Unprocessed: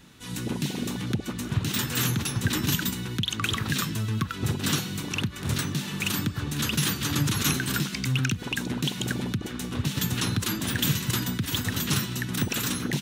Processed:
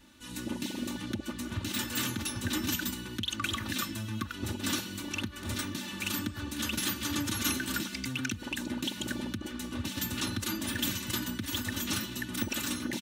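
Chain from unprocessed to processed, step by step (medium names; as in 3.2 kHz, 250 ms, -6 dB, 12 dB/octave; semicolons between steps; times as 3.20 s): comb 3.4 ms, depth 87%; trim -7.5 dB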